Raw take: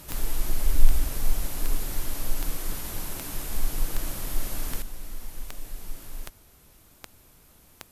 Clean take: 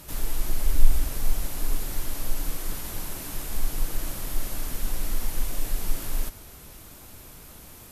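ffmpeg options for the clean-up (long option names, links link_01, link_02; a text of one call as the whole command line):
ffmpeg -i in.wav -af "adeclick=threshold=4,asetnsamples=nb_out_samples=441:pad=0,asendcmd='4.82 volume volume 10dB',volume=0dB" out.wav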